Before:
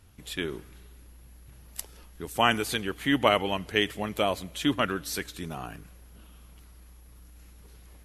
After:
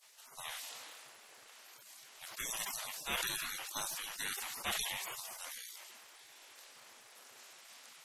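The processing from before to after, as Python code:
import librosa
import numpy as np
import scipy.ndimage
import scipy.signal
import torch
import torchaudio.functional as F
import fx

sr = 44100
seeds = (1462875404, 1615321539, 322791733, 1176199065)

y = fx.spec_gate(x, sr, threshold_db=-30, keep='weak')
y = 10.0 ** (-33.0 / 20.0) * np.tanh(y / 10.0 ** (-33.0 / 20.0))
y = fx.sustainer(y, sr, db_per_s=22.0)
y = F.gain(torch.from_numpy(y), 8.5).numpy()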